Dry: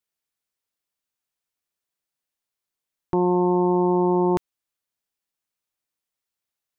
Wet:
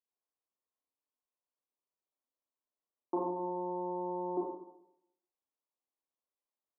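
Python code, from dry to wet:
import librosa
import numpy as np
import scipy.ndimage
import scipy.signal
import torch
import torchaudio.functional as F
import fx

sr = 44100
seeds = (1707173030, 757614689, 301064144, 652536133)

y = fx.env_lowpass_down(x, sr, base_hz=660.0, full_db=-20.0)
y = scipy.signal.sosfilt(scipy.signal.ellip(3, 1.0, 40, [250.0, 1100.0], 'bandpass', fs=sr, output='sos'), y)
y = fx.rev_schroeder(y, sr, rt60_s=0.8, comb_ms=29, drr_db=-3.5)
y = F.gain(torch.from_numpy(y), -8.0).numpy()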